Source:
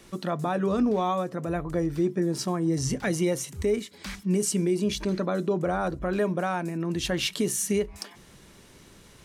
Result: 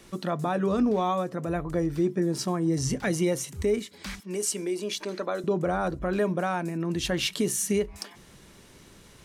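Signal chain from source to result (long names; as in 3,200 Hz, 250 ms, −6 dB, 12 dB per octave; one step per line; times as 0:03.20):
0:04.20–0:05.44: high-pass filter 400 Hz 12 dB per octave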